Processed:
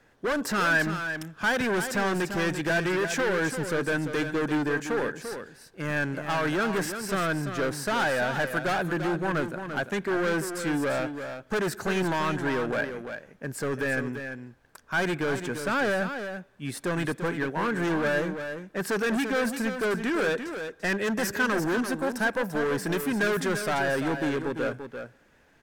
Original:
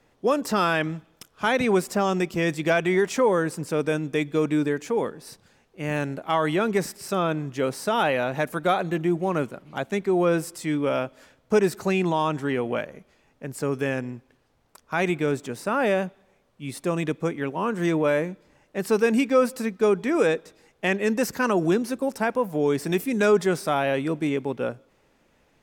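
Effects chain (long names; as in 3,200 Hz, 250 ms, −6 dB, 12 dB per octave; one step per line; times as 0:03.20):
hard clipping −25 dBFS, distortion −7 dB
parametric band 1,600 Hz +12 dB 0.27 octaves
single-tap delay 342 ms −8.5 dB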